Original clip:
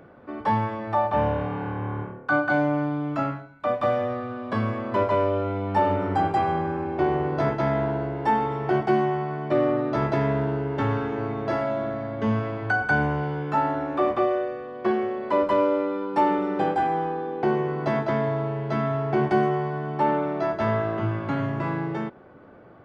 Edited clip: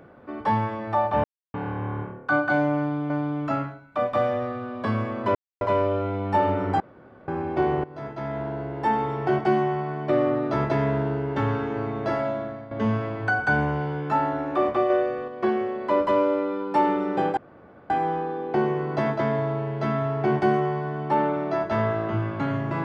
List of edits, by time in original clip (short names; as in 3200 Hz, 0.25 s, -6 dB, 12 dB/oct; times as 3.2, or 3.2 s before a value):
1.24–1.54 mute
2.78–3.1 loop, 2 plays
5.03 insert silence 0.26 s
6.22–6.7 room tone
7.26–8.48 fade in, from -18.5 dB
11.68–12.13 fade out, to -11.5 dB
14.32–14.7 gain +4.5 dB
16.79 insert room tone 0.53 s